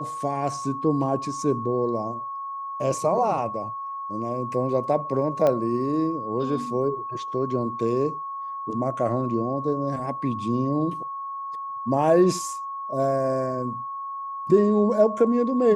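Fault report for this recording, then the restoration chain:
tone 1100 Hz -30 dBFS
5.47 pop -12 dBFS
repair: de-click; notch 1100 Hz, Q 30

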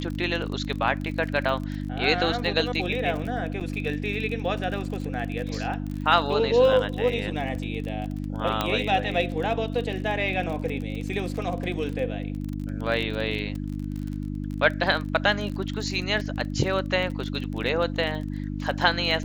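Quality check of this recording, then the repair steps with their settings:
crackle 33/s -31 dBFS
hum 50 Hz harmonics 6 -31 dBFS
3.6–3.61 gap 7.4 ms
8.61 pop -10 dBFS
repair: de-click; de-hum 50 Hz, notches 6; interpolate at 3.6, 7.4 ms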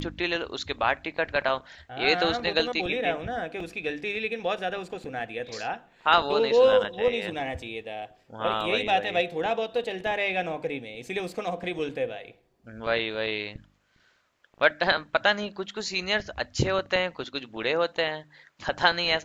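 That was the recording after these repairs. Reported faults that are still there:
8.61 pop

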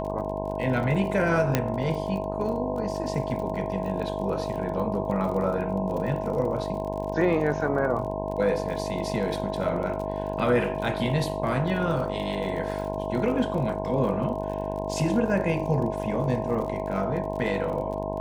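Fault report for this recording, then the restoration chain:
buzz 50 Hz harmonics 21 -32 dBFS
crackle 43/s -34 dBFS
tone 640 Hz -32 dBFS
1.55 pop -7 dBFS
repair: de-click; notch 640 Hz, Q 30; de-hum 50 Hz, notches 21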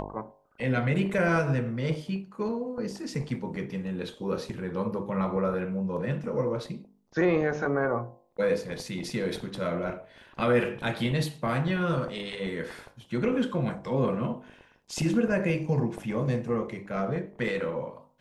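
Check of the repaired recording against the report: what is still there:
none

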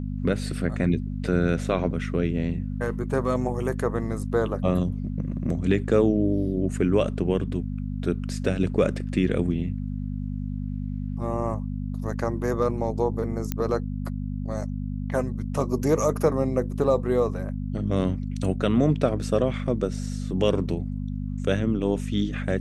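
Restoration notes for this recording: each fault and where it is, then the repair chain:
hum 50 Hz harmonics 5 -30 dBFS
13.52 pop -12 dBFS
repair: de-click; de-hum 50 Hz, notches 5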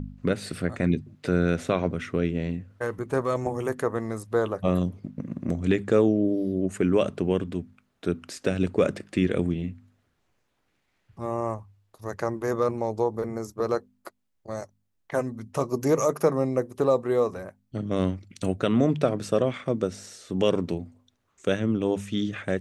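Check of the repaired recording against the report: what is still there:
none

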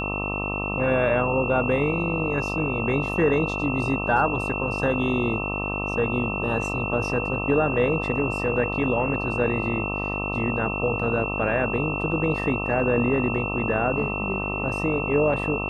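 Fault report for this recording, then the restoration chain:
buzz 50 Hz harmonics 26 -30 dBFS
tone 2700 Hz -29 dBFS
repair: de-hum 50 Hz, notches 26; notch 2700 Hz, Q 30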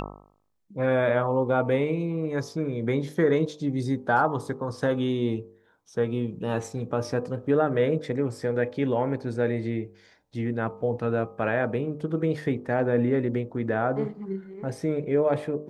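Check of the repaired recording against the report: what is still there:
none

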